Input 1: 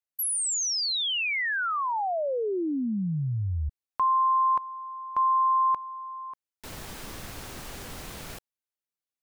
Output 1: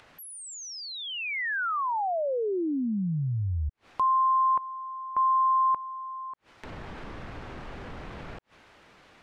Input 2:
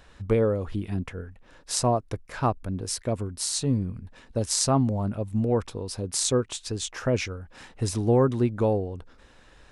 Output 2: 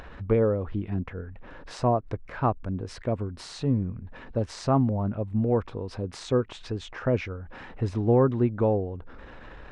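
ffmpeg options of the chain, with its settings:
-af "lowpass=2.1k,acompressor=mode=upward:threshold=-35dB:ratio=4:attack=1.1:release=79:knee=2.83:detection=peak"

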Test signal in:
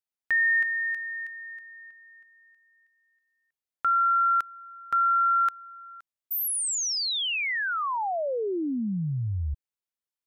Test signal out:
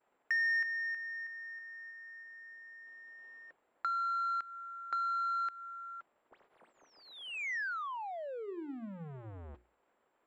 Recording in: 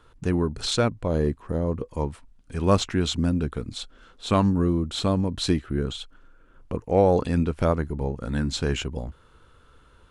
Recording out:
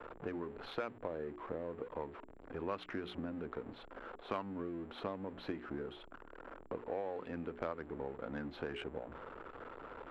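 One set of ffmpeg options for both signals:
-filter_complex "[0:a]aeval=exprs='val(0)+0.5*0.0237*sgn(val(0))':c=same,aemphasis=mode=reproduction:type=50kf,agate=range=-33dB:threshold=-42dB:ratio=3:release=26:detection=peak,acrossover=split=280 4700:gain=0.112 1 0.0891[a][b][c];[a][b][c]amix=inputs=3:normalize=0,bandreject=f=60:t=h:w=6,bandreject=f=120:t=h:w=6,bandreject=f=180:t=h:w=6,bandreject=f=240:t=h:w=6,bandreject=f=300:t=h:w=6,bandreject=f=360:t=h:w=6,bandreject=f=420:t=h:w=6,acrossover=split=1700[d][e];[d]acompressor=threshold=-39dB:ratio=6:attack=68:release=159:knee=6:detection=rms[f];[f][e]amix=inputs=2:normalize=0,aeval=exprs='val(0)+0.00112*sin(2*PI*7400*n/s)':c=same,adynamicsmooth=sensitivity=1:basefreq=1.2k,volume=-2.5dB"

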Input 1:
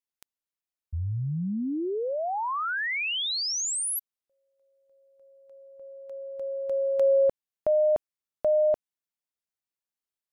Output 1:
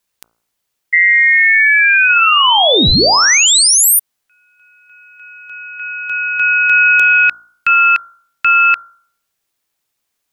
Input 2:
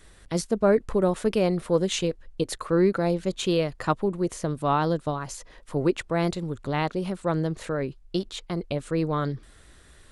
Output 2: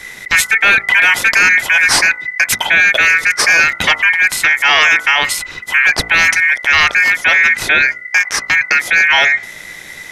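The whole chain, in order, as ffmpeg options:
-af "aeval=exprs='val(0)*sin(2*PI*2000*n/s)':c=same,apsyclip=27dB,bandreject=f=57.31:t=h:w=4,bandreject=f=114.62:t=h:w=4,bandreject=f=171.93:t=h:w=4,bandreject=f=229.24:t=h:w=4,bandreject=f=286.55:t=h:w=4,bandreject=f=343.86:t=h:w=4,bandreject=f=401.17:t=h:w=4,bandreject=f=458.48:t=h:w=4,bandreject=f=515.79:t=h:w=4,bandreject=f=573.1:t=h:w=4,bandreject=f=630.41:t=h:w=4,bandreject=f=687.72:t=h:w=4,bandreject=f=745.03:t=h:w=4,bandreject=f=802.34:t=h:w=4,bandreject=f=859.65:t=h:w=4,bandreject=f=916.96:t=h:w=4,bandreject=f=974.27:t=h:w=4,bandreject=f=1.03158k:t=h:w=4,bandreject=f=1.08889k:t=h:w=4,bandreject=f=1.1462k:t=h:w=4,bandreject=f=1.20351k:t=h:w=4,bandreject=f=1.26082k:t=h:w=4,bandreject=f=1.31813k:t=h:w=4,bandreject=f=1.37544k:t=h:w=4,bandreject=f=1.43275k:t=h:w=4,bandreject=f=1.49006k:t=h:w=4,volume=-4dB"

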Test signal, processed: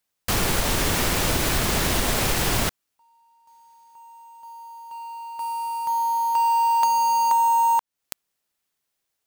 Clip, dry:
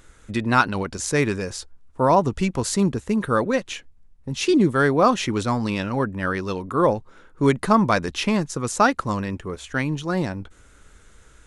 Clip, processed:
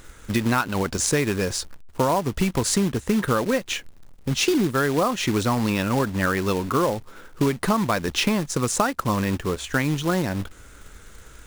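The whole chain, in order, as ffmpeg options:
-af "acrusher=bits=3:mode=log:mix=0:aa=0.000001,acompressor=threshold=-23dB:ratio=10,volume=5.5dB"

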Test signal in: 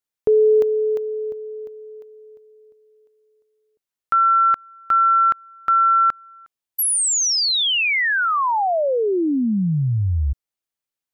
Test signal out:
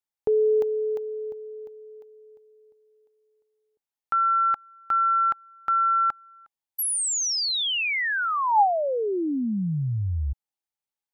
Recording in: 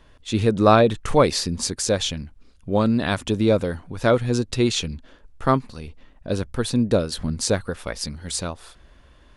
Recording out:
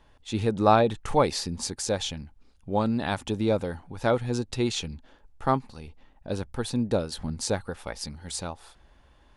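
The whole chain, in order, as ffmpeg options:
-af "equalizer=f=830:t=o:w=0.25:g=10.5,volume=-6.5dB"

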